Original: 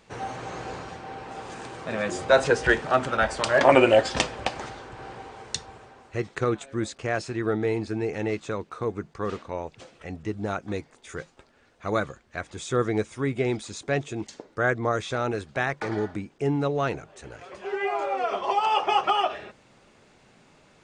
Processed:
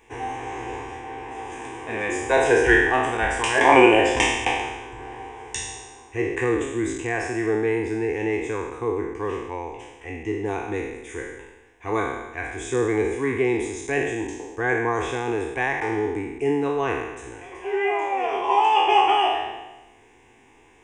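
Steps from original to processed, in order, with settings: spectral trails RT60 1.08 s; fixed phaser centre 890 Hz, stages 8; gain +3.5 dB

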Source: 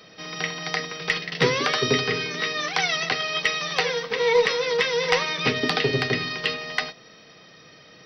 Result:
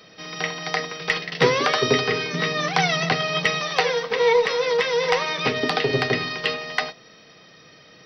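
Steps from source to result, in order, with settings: 2.33–3.62 bell 160 Hz +13 dB 1.2 oct; 4.32–5.9 compressor 2:1, threshold -21 dBFS, peak gain reduction 4.5 dB; dynamic EQ 740 Hz, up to +6 dB, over -37 dBFS, Q 0.82

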